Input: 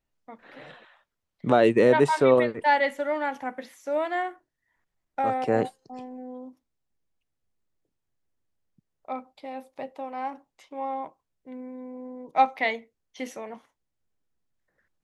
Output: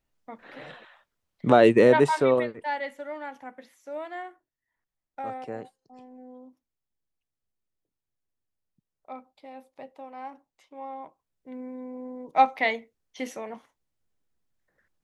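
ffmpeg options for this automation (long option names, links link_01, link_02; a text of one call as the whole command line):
ffmpeg -i in.wav -af "volume=19.5dB,afade=type=out:start_time=1.72:duration=0.94:silence=0.266073,afade=type=out:start_time=5.37:duration=0.26:silence=0.446684,afade=type=in:start_time=5.63:duration=0.59:silence=0.354813,afade=type=in:start_time=10.99:duration=0.65:silence=0.398107" out.wav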